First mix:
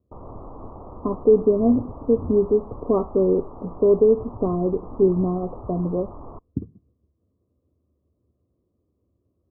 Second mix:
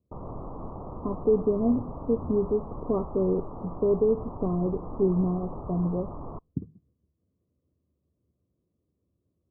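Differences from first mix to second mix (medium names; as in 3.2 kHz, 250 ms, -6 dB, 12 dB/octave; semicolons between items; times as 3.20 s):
speech -7.5 dB; master: add peaking EQ 160 Hz +7.5 dB 0.61 oct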